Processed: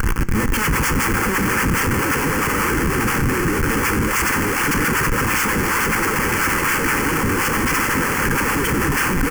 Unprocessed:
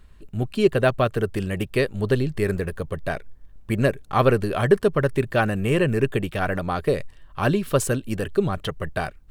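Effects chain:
linear delta modulator 32 kbit/s, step −27.5 dBFS
dynamic equaliser 800 Hz, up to +6 dB, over −34 dBFS, Q 1.5
delay with pitch and tempo change per echo 629 ms, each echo −2 semitones, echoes 3, each echo −6 dB
sine wavefolder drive 19 dB, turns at −4 dBFS
brickwall limiter −13 dBFS, peak gain reduction 9 dB
high-pass filter 450 Hz 12 dB per octave
notch filter 4,000 Hz, Q 9.6
single-tap delay 313 ms −13.5 dB
comparator with hysteresis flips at −25 dBFS
phaser with its sweep stopped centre 1,600 Hz, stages 4
on a send at −11.5 dB: convolution reverb RT60 0.95 s, pre-delay 3 ms
on the sum: level +4.5 dB

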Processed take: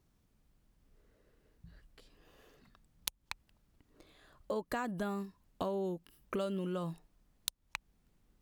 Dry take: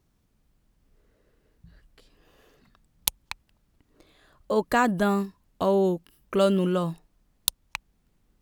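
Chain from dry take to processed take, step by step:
downward compressor 5 to 1, threshold −31 dBFS, peak gain reduction 13 dB
level −3.5 dB

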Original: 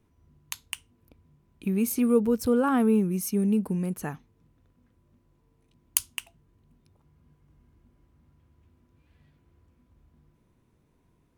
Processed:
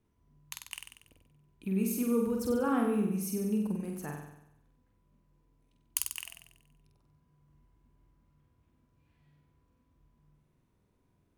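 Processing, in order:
flutter between parallel walls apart 8.1 metres, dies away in 0.82 s
level −8 dB

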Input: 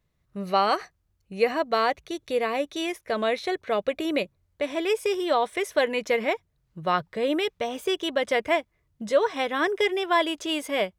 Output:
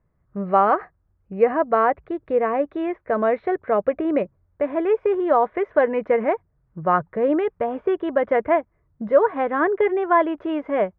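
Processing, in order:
low-pass filter 1,600 Hz 24 dB per octave
level +5.5 dB

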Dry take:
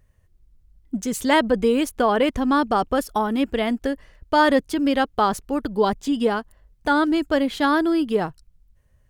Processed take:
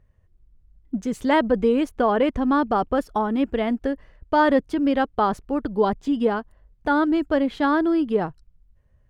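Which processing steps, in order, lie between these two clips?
low-pass filter 1,600 Hz 6 dB per octave

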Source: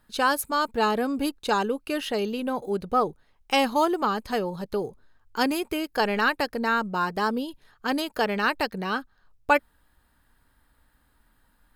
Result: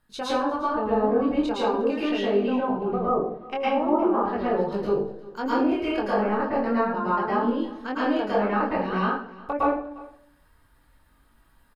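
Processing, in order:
0:02.37–0:04.38: low-pass filter 2,800 Hz 12 dB per octave
treble cut that deepens with the level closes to 630 Hz, closed at −19.5 dBFS
chorus effect 0.43 Hz, delay 20 ms, depth 3.8 ms
single-tap delay 354 ms −20.5 dB
convolution reverb RT60 0.60 s, pre-delay 104 ms, DRR −8.5 dB
level −2 dB

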